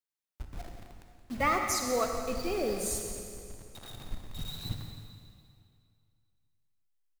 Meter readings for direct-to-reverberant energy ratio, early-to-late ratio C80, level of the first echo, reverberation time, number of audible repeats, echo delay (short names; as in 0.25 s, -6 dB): 3.0 dB, 4.5 dB, -12.5 dB, 2.3 s, 1, 0.173 s